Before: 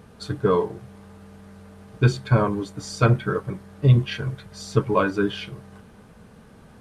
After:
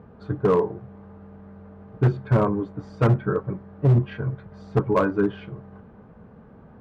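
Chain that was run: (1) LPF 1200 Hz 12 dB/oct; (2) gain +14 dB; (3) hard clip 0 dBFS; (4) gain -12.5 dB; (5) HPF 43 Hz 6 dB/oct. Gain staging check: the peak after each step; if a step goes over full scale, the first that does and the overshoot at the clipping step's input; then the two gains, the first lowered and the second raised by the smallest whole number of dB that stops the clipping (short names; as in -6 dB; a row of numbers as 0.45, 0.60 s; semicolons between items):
-5.5, +8.5, 0.0, -12.5, -10.0 dBFS; step 2, 8.5 dB; step 2 +5 dB, step 4 -3.5 dB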